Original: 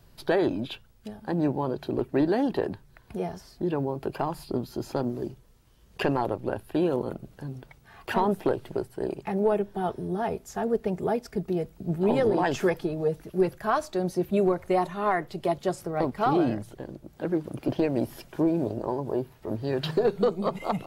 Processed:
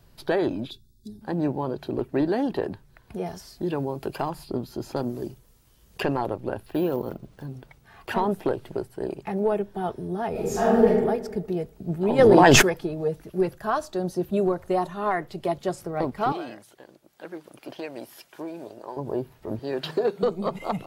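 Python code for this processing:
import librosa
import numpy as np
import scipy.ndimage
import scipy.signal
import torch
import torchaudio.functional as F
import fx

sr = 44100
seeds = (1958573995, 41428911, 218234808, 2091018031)

y = fx.spec_box(x, sr, start_s=0.7, length_s=0.51, low_hz=410.0, high_hz=3400.0, gain_db=-25)
y = fx.high_shelf(y, sr, hz=2900.0, db=8.0, at=(3.26, 4.3))
y = fx.high_shelf(y, sr, hz=6000.0, db=9.5, at=(4.96, 6.01))
y = fx.resample_bad(y, sr, factor=3, down='none', up='hold', at=(6.66, 7.46))
y = fx.reverb_throw(y, sr, start_s=10.31, length_s=0.56, rt60_s=1.2, drr_db=-10.0)
y = fx.env_flatten(y, sr, amount_pct=100, at=(12.18, 12.61), fade=0.02)
y = fx.peak_eq(y, sr, hz=2200.0, db=-8.0, octaves=0.32, at=(13.55, 15.11))
y = fx.highpass(y, sr, hz=1300.0, slope=6, at=(16.32, 18.97))
y = fx.highpass(y, sr, hz=230.0, slope=12, at=(19.59, 20.23))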